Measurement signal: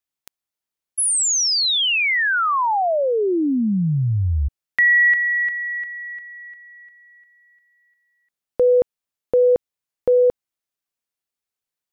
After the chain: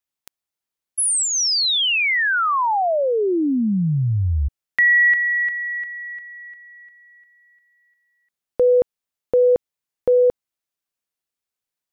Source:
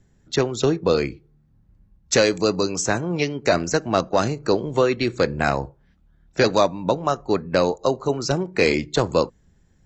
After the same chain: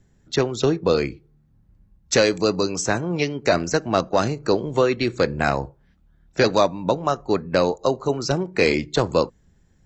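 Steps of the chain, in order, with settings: dynamic bell 6.9 kHz, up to -4 dB, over -47 dBFS, Q 6.7

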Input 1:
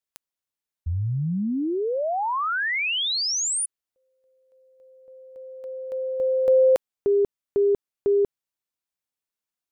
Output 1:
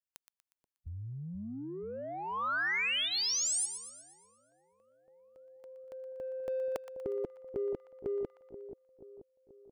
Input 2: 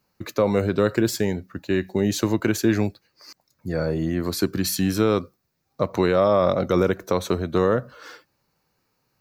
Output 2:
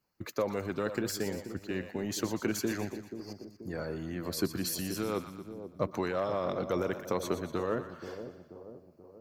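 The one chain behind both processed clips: band-stop 3.8 kHz, Q 13; in parallel at -9 dB: saturation -23.5 dBFS; on the sum: harmonic-percussive split harmonic -9 dB; two-band feedback delay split 850 Hz, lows 482 ms, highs 120 ms, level -10 dB; trim -9 dB

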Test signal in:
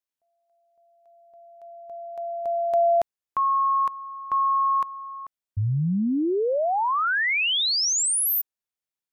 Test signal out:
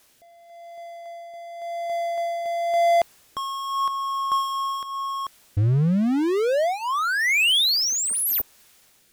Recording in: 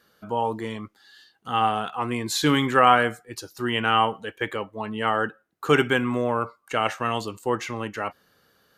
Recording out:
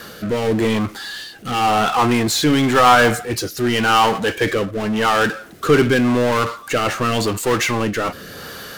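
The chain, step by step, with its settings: power-law waveshaper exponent 0.5; rotary cabinet horn 0.9 Hz; trim +1.5 dB

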